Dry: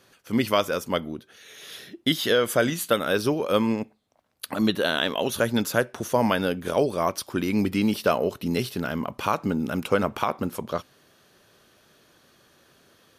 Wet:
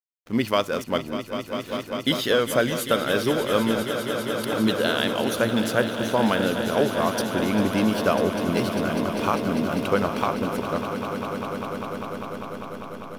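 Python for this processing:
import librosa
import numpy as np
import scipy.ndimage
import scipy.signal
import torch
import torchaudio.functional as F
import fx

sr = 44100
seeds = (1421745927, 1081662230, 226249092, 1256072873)

y = fx.backlash(x, sr, play_db=-36.0)
y = fx.echo_swell(y, sr, ms=199, loudest=5, wet_db=-11.5)
y = fx.resample_linear(y, sr, factor=2, at=(5.45, 6.43))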